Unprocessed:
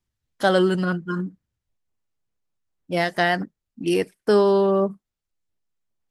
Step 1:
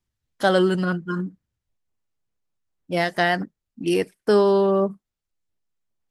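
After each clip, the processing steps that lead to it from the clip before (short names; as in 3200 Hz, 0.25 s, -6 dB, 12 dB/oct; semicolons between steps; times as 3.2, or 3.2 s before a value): nothing audible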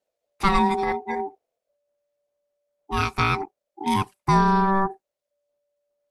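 ring modulator 580 Hz; gain +1.5 dB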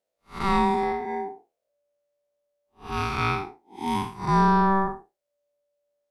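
time blur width 0.163 s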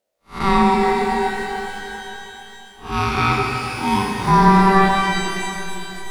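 shimmer reverb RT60 3.3 s, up +12 st, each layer -8 dB, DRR 2 dB; gain +6 dB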